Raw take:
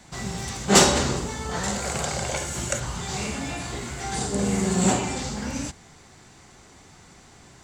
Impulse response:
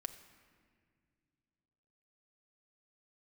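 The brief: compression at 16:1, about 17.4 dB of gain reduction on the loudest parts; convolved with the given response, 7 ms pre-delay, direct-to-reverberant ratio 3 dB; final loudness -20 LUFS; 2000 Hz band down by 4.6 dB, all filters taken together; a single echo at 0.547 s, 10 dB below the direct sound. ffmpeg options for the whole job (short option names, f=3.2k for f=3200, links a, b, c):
-filter_complex "[0:a]equalizer=f=2k:t=o:g=-6,acompressor=threshold=-28dB:ratio=16,aecho=1:1:547:0.316,asplit=2[a][b];[1:a]atrim=start_sample=2205,adelay=7[c];[b][c]afir=irnorm=-1:irlink=0,volume=-0.5dB[d];[a][d]amix=inputs=2:normalize=0,volume=11dB"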